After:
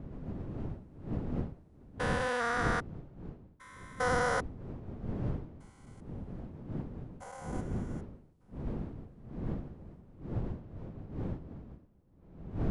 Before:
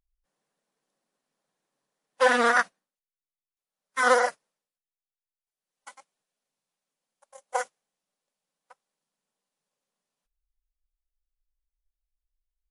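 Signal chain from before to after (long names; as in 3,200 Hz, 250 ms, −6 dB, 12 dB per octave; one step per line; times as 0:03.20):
spectrum averaged block by block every 400 ms
wind on the microphone 210 Hz −36 dBFS
level −3.5 dB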